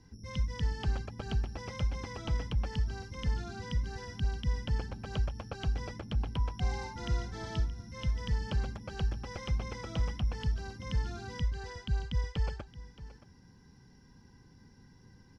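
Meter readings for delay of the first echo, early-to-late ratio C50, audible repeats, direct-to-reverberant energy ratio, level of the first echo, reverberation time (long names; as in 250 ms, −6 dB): 624 ms, no reverb audible, 1, no reverb audible, −16.0 dB, no reverb audible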